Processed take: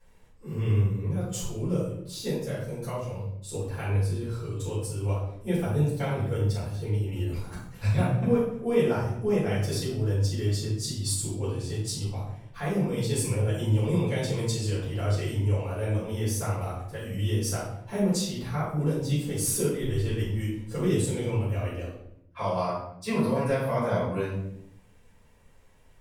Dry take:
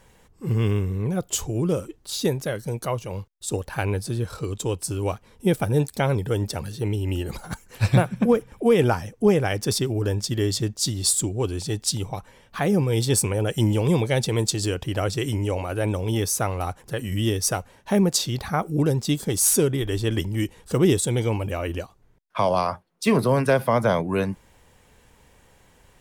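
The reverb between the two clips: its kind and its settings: shoebox room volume 160 m³, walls mixed, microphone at 4.3 m; gain -20 dB

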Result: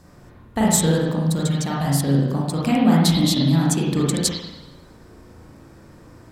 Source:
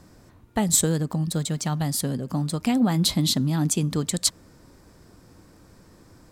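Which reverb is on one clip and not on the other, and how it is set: spring tank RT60 1 s, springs 36/50 ms, chirp 60 ms, DRR -5 dB

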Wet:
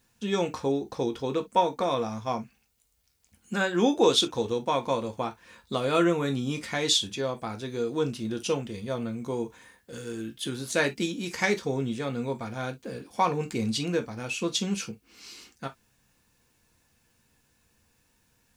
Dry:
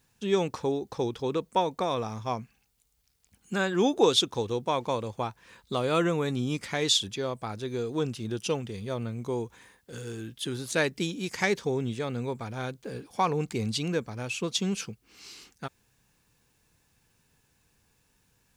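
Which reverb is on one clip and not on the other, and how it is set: non-linear reverb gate 80 ms falling, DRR 4.5 dB

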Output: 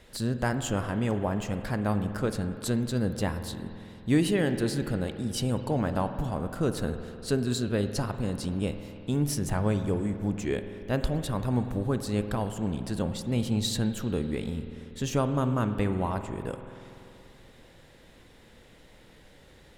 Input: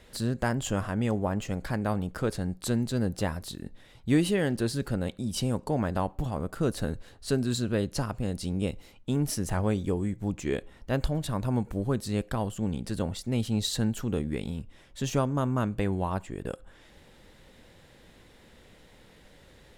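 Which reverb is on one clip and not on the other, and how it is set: spring tank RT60 2.9 s, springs 48 ms, chirp 75 ms, DRR 8.5 dB

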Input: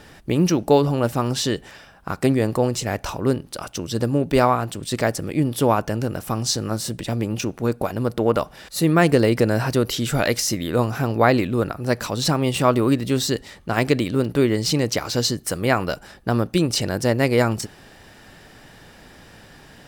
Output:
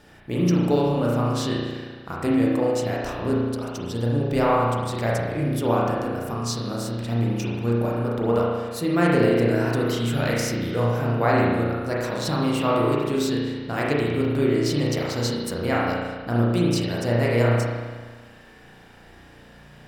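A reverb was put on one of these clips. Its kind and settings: spring tank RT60 1.5 s, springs 34 ms, chirp 45 ms, DRR -5 dB; gain -8.5 dB

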